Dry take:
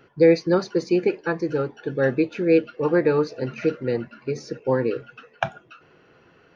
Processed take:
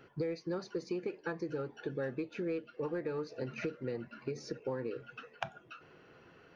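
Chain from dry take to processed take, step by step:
in parallel at −11 dB: hard clipping −18 dBFS, distortion −9 dB
on the sum: downward compressor 6 to 1, threshold −29 dBFS, peak gain reduction 18 dB
level −6 dB

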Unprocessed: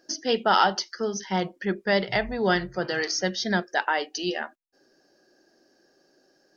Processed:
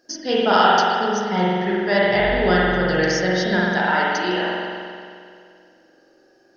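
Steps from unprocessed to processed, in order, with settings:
spring reverb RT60 2.2 s, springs 44 ms, chirp 80 ms, DRR −6.5 dB

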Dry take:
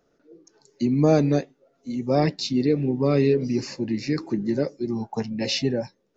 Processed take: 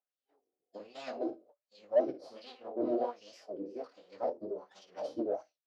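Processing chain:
lower of the sound and its delayed copy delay 3.4 ms
high-pass filter 58 Hz
flutter between parallel walls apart 9.9 metres, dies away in 0.31 s
noise gate −50 dBFS, range −11 dB
octave-band graphic EQ 125/250/500/1,000/2,000/4,000 Hz +6/−6/+12/−7/−9/+7 dB
wrong playback speed 44.1 kHz file played as 48 kHz
chorus effect 2.9 Hz, delay 16.5 ms, depth 7.1 ms
LFO wah 1.3 Hz 290–3,300 Hz, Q 2.6
phase-vocoder pitch shift with formants kept −4 semitones
in parallel at −9 dB: soft clipping −20 dBFS, distortion −12 dB
on the sum: low-shelf EQ 190 Hz −9 dB
level −6 dB

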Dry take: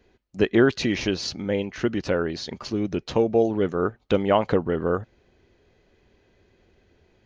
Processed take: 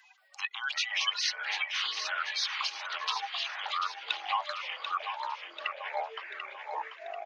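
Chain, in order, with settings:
spectral magnitudes quantised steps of 30 dB
reverb reduction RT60 0.66 s
brickwall limiter −16 dBFS, peak gain reduction 8.5 dB
speech leveller 0.5 s
Chebyshev high-pass with heavy ripple 770 Hz, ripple 9 dB
delay with pitch and tempo change per echo 178 ms, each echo −5 semitones, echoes 3, each echo −6 dB
repeating echo 739 ms, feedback 38%, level −9.5 dB
multiband upward and downward compressor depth 40%
level +7.5 dB

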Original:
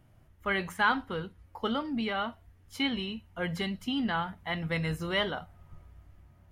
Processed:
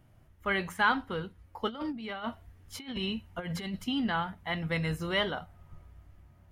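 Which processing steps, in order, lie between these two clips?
0:01.68–0:03.84: compressor whose output falls as the input rises −35 dBFS, ratio −0.5

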